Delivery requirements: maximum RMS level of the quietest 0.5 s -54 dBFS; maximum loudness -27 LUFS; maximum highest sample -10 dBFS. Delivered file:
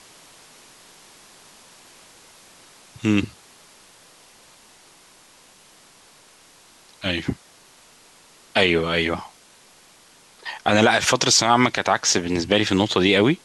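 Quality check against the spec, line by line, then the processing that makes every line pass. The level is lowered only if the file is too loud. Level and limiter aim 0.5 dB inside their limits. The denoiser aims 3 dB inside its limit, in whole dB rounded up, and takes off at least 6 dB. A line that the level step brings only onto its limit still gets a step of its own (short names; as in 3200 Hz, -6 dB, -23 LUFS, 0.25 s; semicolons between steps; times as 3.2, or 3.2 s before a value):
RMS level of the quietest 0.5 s -52 dBFS: fail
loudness -19.5 LUFS: fail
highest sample -5.0 dBFS: fail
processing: gain -8 dB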